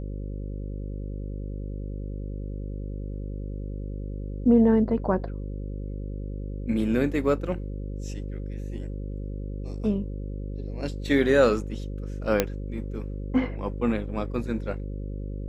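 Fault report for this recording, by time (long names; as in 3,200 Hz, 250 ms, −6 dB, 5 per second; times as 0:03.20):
mains buzz 50 Hz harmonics 11 −33 dBFS
0:12.40: click −6 dBFS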